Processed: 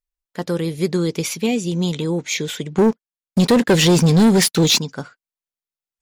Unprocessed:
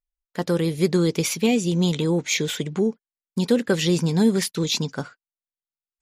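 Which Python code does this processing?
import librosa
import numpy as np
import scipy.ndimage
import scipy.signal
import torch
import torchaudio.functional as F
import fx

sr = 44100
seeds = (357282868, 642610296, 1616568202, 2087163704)

y = fx.leveller(x, sr, passes=3, at=(2.78, 4.79))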